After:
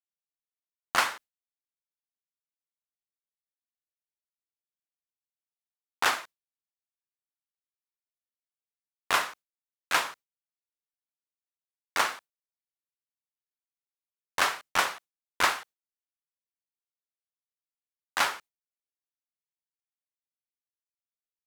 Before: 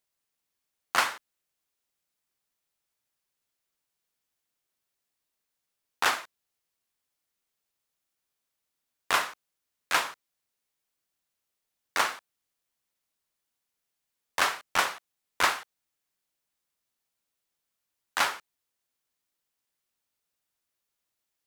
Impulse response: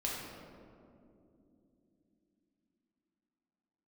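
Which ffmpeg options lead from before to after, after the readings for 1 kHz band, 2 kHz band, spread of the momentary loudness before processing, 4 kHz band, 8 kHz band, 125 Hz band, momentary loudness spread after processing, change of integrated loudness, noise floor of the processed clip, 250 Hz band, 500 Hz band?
0.0 dB, 0.0 dB, 11 LU, 0.0 dB, 0.0 dB, +0.5 dB, 11 LU, 0.0 dB, below −85 dBFS, 0.0 dB, 0.0 dB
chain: -af "agate=range=-33dB:threshold=-42dB:ratio=3:detection=peak"

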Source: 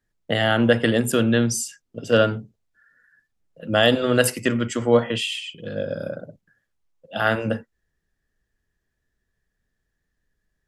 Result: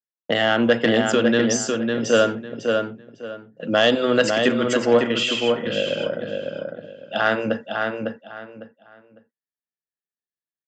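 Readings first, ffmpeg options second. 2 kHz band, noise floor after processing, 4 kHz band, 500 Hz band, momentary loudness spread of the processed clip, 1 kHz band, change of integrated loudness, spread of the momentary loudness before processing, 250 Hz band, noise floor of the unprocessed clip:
+2.0 dB, below −85 dBFS, +2.5 dB, +2.5 dB, 16 LU, +2.5 dB, +0.5 dB, 14 LU, +1.5 dB, −78 dBFS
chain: -filter_complex "[0:a]agate=range=-33dB:threshold=-44dB:ratio=3:detection=peak,highpass=210,asplit=2[link_01][link_02];[link_02]acompressor=threshold=-31dB:ratio=6,volume=2dB[link_03];[link_01][link_03]amix=inputs=2:normalize=0,asoftclip=type=tanh:threshold=-5dB,asplit=2[link_04][link_05];[link_05]adelay=553,lowpass=frequency=3700:poles=1,volume=-4dB,asplit=2[link_06][link_07];[link_07]adelay=553,lowpass=frequency=3700:poles=1,volume=0.25,asplit=2[link_08][link_09];[link_09]adelay=553,lowpass=frequency=3700:poles=1,volume=0.25[link_10];[link_04][link_06][link_08][link_10]amix=inputs=4:normalize=0,aresample=16000,aresample=44100"

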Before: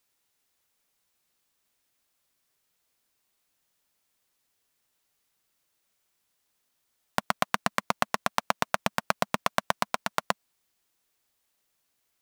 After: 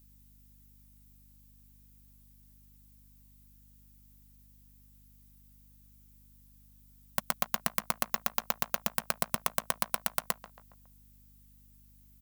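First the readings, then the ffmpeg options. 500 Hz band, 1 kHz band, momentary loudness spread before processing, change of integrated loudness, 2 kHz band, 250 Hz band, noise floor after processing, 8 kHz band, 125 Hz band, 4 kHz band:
−6.5 dB, −7.5 dB, 5 LU, −2.5 dB, −6.5 dB, −6.5 dB, −59 dBFS, +1.5 dB, −4.0 dB, −4.5 dB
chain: -filter_complex "[0:a]asplit=2[link_01][link_02];[link_02]adelay=138,lowpass=frequency=2200:poles=1,volume=-19dB,asplit=2[link_03][link_04];[link_04]adelay=138,lowpass=frequency=2200:poles=1,volume=0.52,asplit=2[link_05][link_06];[link_06]adelay=138,lowpass=frequency=2200:poles=1,volume=0.52,asplit=2[link_07][link_08];[link_08]adelay=138,lowpass=frequency=2200:poles=1,volume=0.52[link_09];[link_03][link_05][link_07][link_09]amix=inputs=4:normalize=0[link_10];[link_01][link_10]amix=inputs=2:normalize=0,aeval=exprs='val(0)+0.00178*(sin(2*PI*50*n/s)+sin(2*PI*2*50*n/s)/2+sin(2*PI*3*50*n/s)/3+sin(2*PI*4*50*n/s)/4+sin(2*PI*5*50*n/s)/5)':channel_layout=same,apsyclip=12dB,aemphasis=mode=production:type=50fm,volume=-16dB"

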